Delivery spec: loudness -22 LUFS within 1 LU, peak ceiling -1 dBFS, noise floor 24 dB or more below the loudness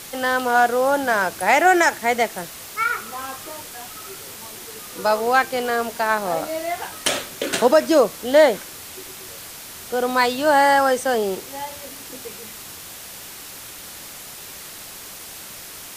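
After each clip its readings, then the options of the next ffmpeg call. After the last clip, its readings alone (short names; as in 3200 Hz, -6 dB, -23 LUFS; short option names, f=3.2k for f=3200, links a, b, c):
noise floor -38 dBFS; noise floor target -44 dBFS; loudness -19.5 LUFS; peak -2.5 dBFS; loudness target -22.0 LUFS
-> -af "afftdn=nr=6:nf=-38"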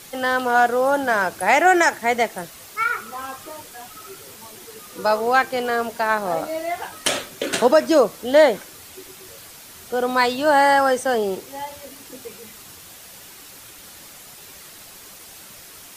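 noise floor -43 dBFS; noise floor target -44 dBFS
-> -af "afftdn=nr=6:nf=-43"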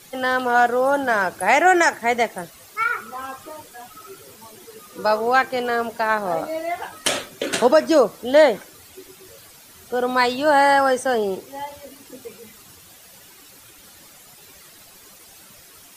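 noise floor -47 dBFS; loudness -19.5 LUFS; peak -3.0 dBFS; loudness target -22.0 LUFS
-> -af "volume=-2.5dB"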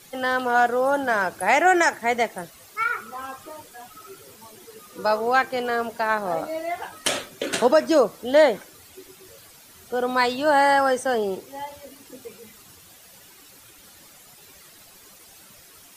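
loudness -22.0 LUFS; peak -5.5 dBFS; noise floor -50 dBFS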